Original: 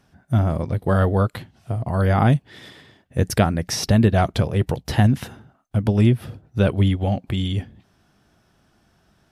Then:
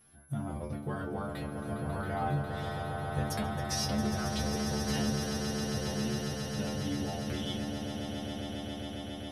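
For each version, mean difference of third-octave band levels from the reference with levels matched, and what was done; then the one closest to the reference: 12.5 dB: compressor, threshold -26 dBFS, peak gain reduction 14.5 dB; metallic resonator 71 Hz, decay 0.54 s, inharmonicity 0.002; whine 11000 Hz -67 dBFS; swelling echo 0.136 s, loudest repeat 8, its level -9 dB; gain +5.5 dB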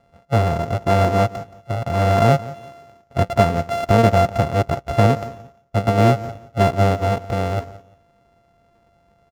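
7.5 dB: sample sorter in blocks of 64 samples; LPF 2500 Hz 6 dB/oct; bell 660 Hz +5.5 dB 1.2 oct; feedback echo 0.174 s, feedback 22%, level -18 dB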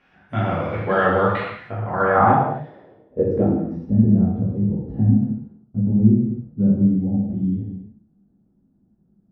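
9.5 dB: low shelf 300 Hz -11 dB; on a send: flutter echo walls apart 11.1 m, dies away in 0.25 s; on the sum: non-linear reverb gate 0.34 s falling, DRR -7 dB; low-pass sweep 2400 Hz -> 220 Hz, 1.5–3.94; gain -2.5 dB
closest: second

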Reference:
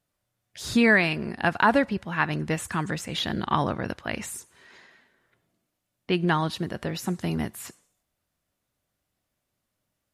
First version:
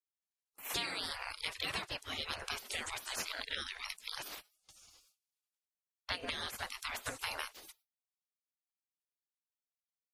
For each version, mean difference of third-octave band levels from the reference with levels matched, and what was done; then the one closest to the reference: 15.5 dB: spectral gate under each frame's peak -25 dB weak; compressor 3:1, threshold -50 dBFS, peak gain reduction 13 dB; gate with hold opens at -56 dBFS; gain +12 dB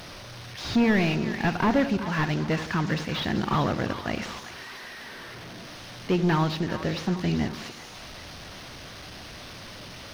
7.5 dB: delta modulation 32 kbps, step -36.5 dBFS; sample leveller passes 2; on a send: split-band echo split 800 Hz, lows 83 ms, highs 0.387 s, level -11 dB; on the sum: gain -4.5 dB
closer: second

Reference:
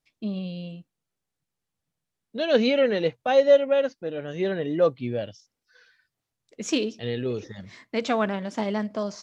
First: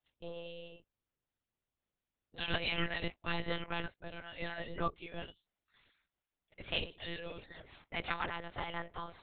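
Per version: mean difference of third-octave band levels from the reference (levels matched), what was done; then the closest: 9.5 dB: spectral gate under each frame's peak -10 dB weak; monotone LPC vocoder at 8 kHz 170 Hz; gain -3.5 dB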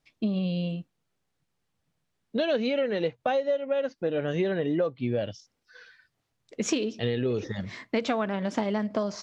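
3.5 dB: high shelf 7100 Hz -10.5 dB; compressor 16:1, threshold -30 dBFS, peak gain reduction 18.5 dB; gain +7 dB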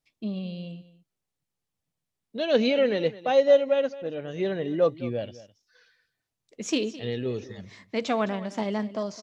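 1.0 dB: bell 1500 Hz -3.5 dB 0.41 oct; on a send: echo 0.212 s -17 dB; on the sum: gain -1.5 dB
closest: third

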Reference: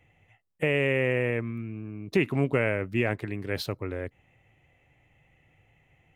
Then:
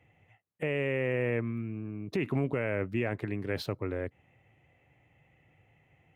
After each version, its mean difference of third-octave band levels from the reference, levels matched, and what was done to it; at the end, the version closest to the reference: 2.5 dB: HPF 75 Hz; high shelf 3100 Hz -8 dB; limiter -20 dBFS, peak gain reduction 9 dB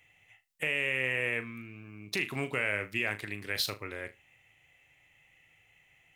7.0 dB: tilt shelf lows -10 dB, about 1200 Hz; limiter -17 dBFS, peak gain reduction 7 dB; flutter echo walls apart 6.6 m, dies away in 0.21 s; gain -1.5 dB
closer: first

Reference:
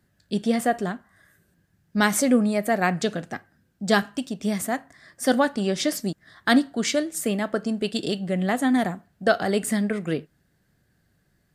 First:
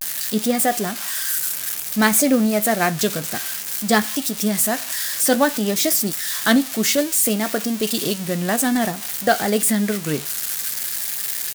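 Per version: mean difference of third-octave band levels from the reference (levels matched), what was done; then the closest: 9.5 dB: switching spikes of -17 dBFS; vibrato 0.56 Hz 84 cents; doubler 14 ms -12 dB; gain +2.5 dB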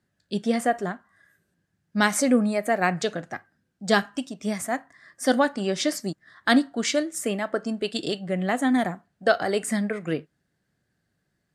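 2.5 dB: LPF 10000 Hz 12 dB/oct; spectral noise reduction 6 dB; low shelf 74 Hz -10.5 dB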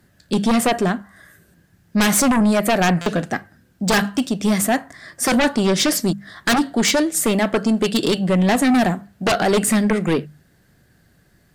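4.5 dB: notches 50/100/150/200 Hz; in parallel at -4 dB: sine folder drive 15 dB, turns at -5 dBFS; on the sum: stuck buffer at 3.01, samples 256, times 8; gain -5.5 dB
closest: second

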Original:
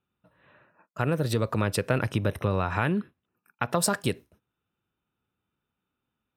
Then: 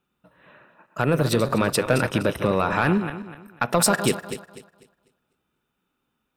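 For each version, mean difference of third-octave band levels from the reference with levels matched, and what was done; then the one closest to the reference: 5.0 dB: regenerating reverse delay 0.124 s, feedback 53%, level -10 dB; bell 96 Hz -12 dB 0.54 oct; soft clip -14.5 dBFS, distortion -18 dB; gain +7 dB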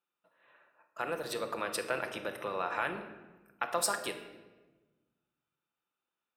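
7.5 dB: octaver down 2 oct, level +3 dB; HPF 530 Hz 12 dB/oct; shoebox room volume 830 m³, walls mixed, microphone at 0.78 m; gain -5 dB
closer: first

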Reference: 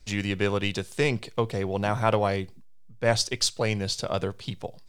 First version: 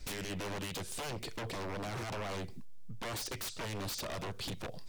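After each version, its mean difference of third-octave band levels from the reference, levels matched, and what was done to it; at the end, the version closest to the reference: 10.5 dB: limiter -19.5 dBFS, peak gain reduction 11 dB; compressor 5:1, threshold -36 dBFS, peak gain reduction 10.5 dB; wavefolder -40 dBFS; gain +6 dB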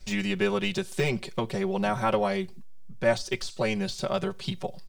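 3.0 dB: compressor 1.5:1, threshold -37 dBFS, peak gain reduction 7.5 dB; comb 5.3 ms, depth 100%; de-esser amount 85%; gain +2.5 dB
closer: second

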